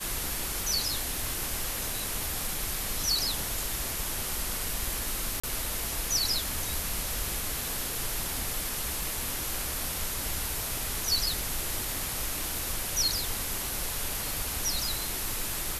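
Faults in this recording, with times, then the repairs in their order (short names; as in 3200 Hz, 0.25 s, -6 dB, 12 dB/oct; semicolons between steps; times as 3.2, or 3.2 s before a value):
5.4–5.43 gap 35 ms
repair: interpolate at 5.4, 35 ms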